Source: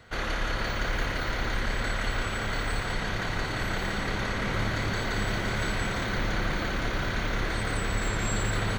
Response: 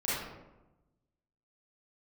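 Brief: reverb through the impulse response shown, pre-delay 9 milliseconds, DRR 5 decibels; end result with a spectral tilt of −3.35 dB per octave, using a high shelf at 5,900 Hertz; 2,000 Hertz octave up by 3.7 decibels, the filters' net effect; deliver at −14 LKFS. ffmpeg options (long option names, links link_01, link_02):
-filter_complex "[0:a]equalizer=frequency=2000:width_type=o:gain=5.5,highshelf=frequency=5900:gain=-8.5,asplit=2[link_01][link_02];[1:a]atrim=start_sample=2205,adelay=9[link_03];[link_02][link_03]afir=irnorm=-1:irlink=0,volume=-12.5dB[link_04];[link_01][link_04]amix=inputs=2:normalize=0,volume=12.5dB"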